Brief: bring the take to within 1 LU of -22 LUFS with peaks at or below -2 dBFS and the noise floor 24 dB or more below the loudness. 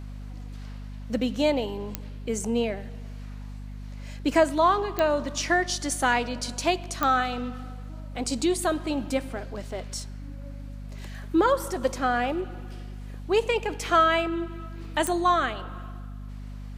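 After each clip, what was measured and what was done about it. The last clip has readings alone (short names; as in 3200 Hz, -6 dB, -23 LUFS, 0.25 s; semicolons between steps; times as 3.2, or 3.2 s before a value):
clicks 4; hum 50 Hz; harmonics up to 250 Hz; hum level -35 dBFS; loudness -26.0 LUFS; peak -6.5 dBFS; loudness target -22.0 LUFS
-> de-click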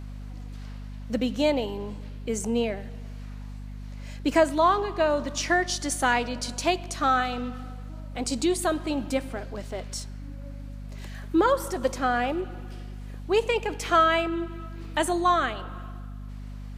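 clicks 0; hum 50 Hz; harmonics up to 250 Hz; hum level -35 dBFS
-> notches 50/100/150/200/250 Hz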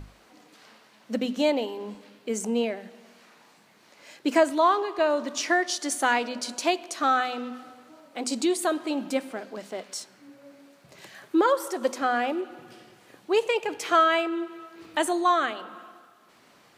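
hum none; loudness -26.0 LUFS; peak -7.0 dBFS; loudness target -22.0 LUFS
-> gain +4 dB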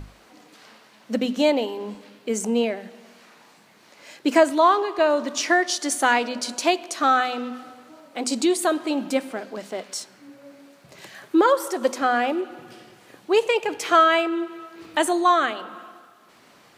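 loudness -22.0 LUFS; peak -3.0 dBFS; noise floor -54 dBFS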